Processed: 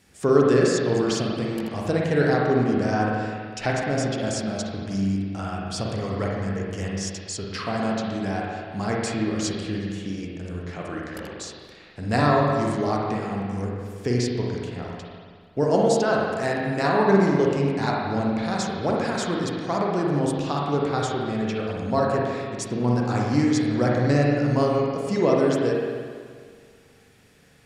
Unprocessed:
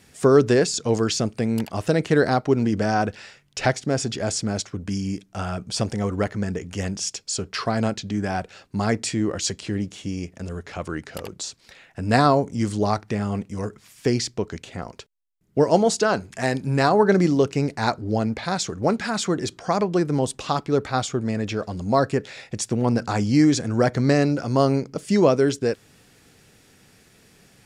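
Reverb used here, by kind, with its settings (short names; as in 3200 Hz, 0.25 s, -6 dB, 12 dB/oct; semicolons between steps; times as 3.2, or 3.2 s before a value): spring tank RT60 1.9 s, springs 41/56 ms, chirp 20 ms, DRR -3 dB; gain -5.5 dB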